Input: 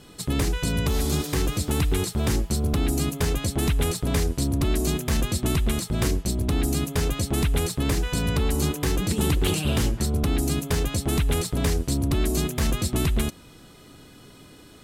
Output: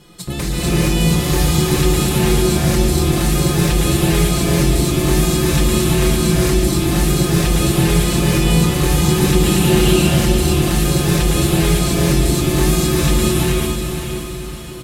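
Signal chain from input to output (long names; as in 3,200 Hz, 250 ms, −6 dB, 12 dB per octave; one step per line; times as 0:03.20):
comb filter 5.7 ms, depth 71%
on a send: feedback delay with all-pass diffusion 531 ms, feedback 47%, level −7 dB
on the sum: reverb whose tail is shaped and stops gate 470 ms rising, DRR −7 dB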